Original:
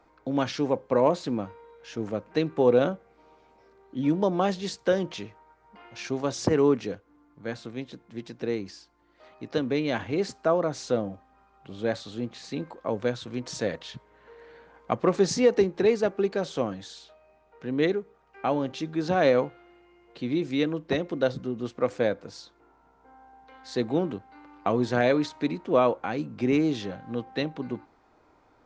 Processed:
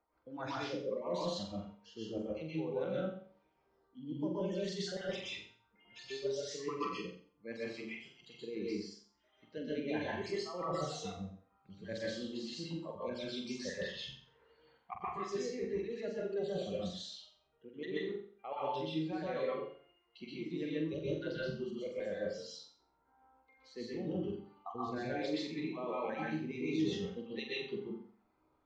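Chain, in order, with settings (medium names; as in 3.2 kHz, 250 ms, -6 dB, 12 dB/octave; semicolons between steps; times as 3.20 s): random holes in the spectrogram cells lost 31%; spectral noise reduction 16 dB; reverse; compression 10:1, threshold -36 dBFS, peak gain reduction 21 dB; reverse; distance through air 83 m; flutter echo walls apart 7.6 m, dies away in 0.44 s; reverberation RT60 0.35 s, pre-delay 118 ms, DRR -5.5 dB; trim -4 dB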